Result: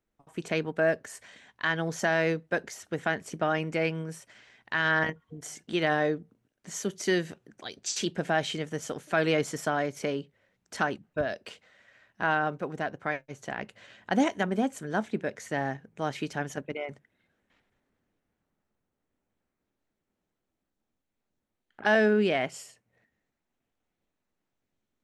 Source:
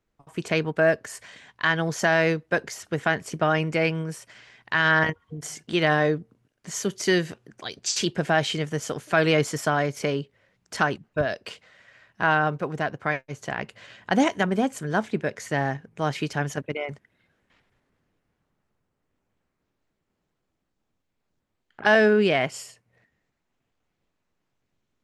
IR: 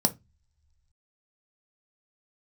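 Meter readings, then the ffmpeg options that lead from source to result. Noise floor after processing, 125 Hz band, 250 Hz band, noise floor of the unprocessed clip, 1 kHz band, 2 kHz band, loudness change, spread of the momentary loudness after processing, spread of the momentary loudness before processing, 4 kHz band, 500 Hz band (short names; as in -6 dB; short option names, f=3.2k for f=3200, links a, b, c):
-84 dBFS, -7.5 dB, -4.0 dB, -78 dBFS, -5.0 dB, -5.5 dB, -5.0 dB, 15 LU, 16 LU, -6.0 dB, -4.5 dB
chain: -filter_complex "[0:a]asplit=2[a][b];[1:a]atrim=start_sample=2205,atrim=end_sample=3528[c];[b][c]afir=irnorm=-1:irlink=0,volume=-25.5dB[d];[a][d]amix=inputs=2:normalize=0,volume=-6dB"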